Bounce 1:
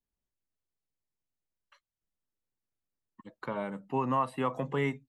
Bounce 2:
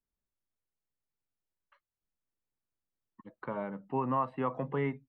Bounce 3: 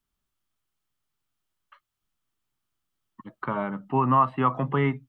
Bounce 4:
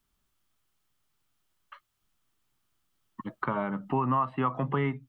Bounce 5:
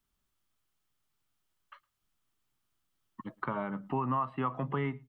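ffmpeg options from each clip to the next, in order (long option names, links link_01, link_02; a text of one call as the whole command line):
ffmpeg -i in.wav -af "lowpass=1900,volume=-1.5dB" out.wav
ffmpeg -i in.wav -af "equalizer=frequency=125:width_type=o:width=0.33:gain=4,equalizer=frequency=500:width_type=o:width=0.33:gain=-9,equalizer=frequency=1250:width_type=o:width=0.33:gain=7,equalizer=frequency=3150:width_type=o:width=0.33:gain=6,volume=8.5dB" out.wav
ffmpeg -i in.wav -af "acompressor=threshold=-35dB:ratio=2.5,volume=5.5dB" out.wav
ffmpeg -i in.wav -filter_complex "[0:a]asplit=2[link_01][link_02];[link_02]adelay=110.8,volume=-27dB,highshelf=frequency=4000:gain=-2.49[link_03];[link_01][link_03]amix=inputs=2:normalize=0,volume=-4.5dB" out.wav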